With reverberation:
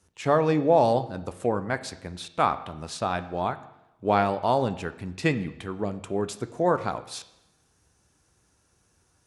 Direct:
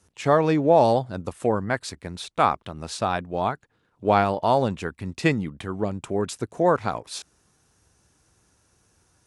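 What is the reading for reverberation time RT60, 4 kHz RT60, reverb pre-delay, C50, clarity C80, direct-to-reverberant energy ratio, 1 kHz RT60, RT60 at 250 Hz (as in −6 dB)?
0.90 s, 0.90 s, 9 ms, 14.5 dB, 17.0 dB, 11.0 dB, 0.90 s, 0.90 s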